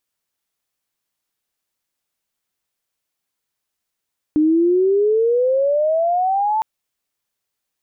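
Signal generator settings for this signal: chirp logarithmic 300 Hz -> 890 Hz -11.5 dBFS -> -15.5 dBFS 2.26 s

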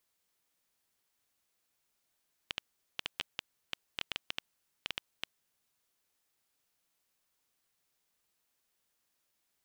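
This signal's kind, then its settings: random clicks 6/s -16 dBFS 2.97 s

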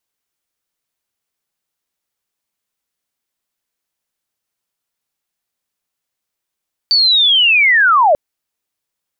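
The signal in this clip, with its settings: chirp linear 4600 Hz -> 550 Hz -8.5 dBFS -> -7 dBFS 1.24 s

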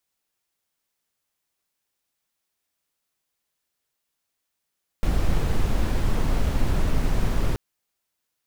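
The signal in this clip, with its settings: noise brown, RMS -20 dBFS 2.53 s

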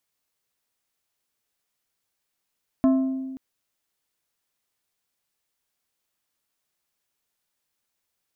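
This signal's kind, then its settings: glass hit plate, length 0.53 s, lowest mode 264 Hz, decay 1.56 s, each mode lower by 9 dB, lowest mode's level -14 dB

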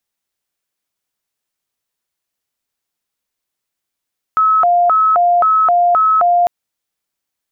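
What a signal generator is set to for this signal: siren hi-lo 702–1290 Hz 1.9/s sine -8.5 dBFS 2.10 s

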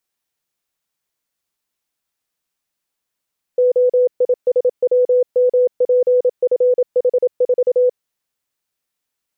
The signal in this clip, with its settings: Morse "OISWMPFH4" 27 wpm 498 Hz -10 dBFS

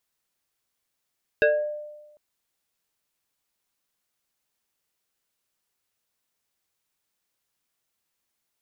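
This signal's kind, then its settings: FM tone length 0.75 s, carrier 598 Hz, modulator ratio 1.75, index 1.6, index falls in 0.50 s exponential, decay 1.14 s, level -14 dB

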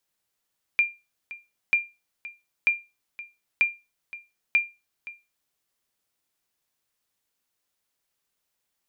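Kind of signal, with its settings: sonar ping 2390 Hz, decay 0.25 s, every 0.94 s, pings 5, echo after 0.52 s, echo -18 dB -12.5 dBFS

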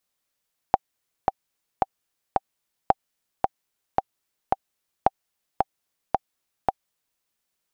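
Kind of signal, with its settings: metronome 111 bpm, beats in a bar 4, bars 3, 776 Hz, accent 3.5 dB -2.5 dBFS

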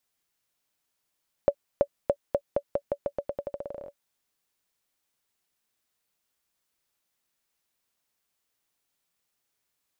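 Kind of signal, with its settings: bouncing ball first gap 0.33 s, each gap 0.87, 569 Hz, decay 65 ms -9 dBFS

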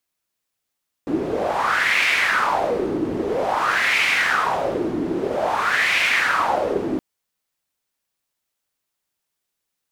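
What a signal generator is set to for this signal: wind-like swept noise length 5.92 s, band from 310 Hz, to 2300 Hz, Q 4.3, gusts 3, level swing 5 dB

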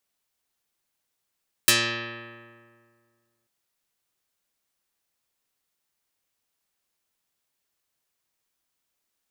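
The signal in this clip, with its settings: plucked string A#2, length 1.79 s, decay 2.03 s, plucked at 0.16, dark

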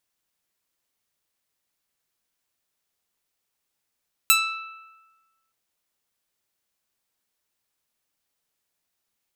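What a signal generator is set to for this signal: plucked string E6, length 1.22 s, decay 1.30 s, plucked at 0.27, bright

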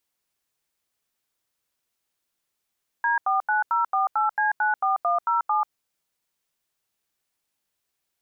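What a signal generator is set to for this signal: DTMF "D49048C94107", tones 0.139 s, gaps 84 ms, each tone -22 dBFS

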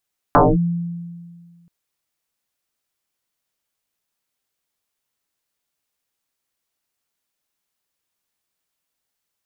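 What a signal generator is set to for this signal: FM tone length 1.33 s, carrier 171 Hz, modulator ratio 0.85, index 8.5, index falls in 0.22 s linear, decay 1.85 s, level -7 dB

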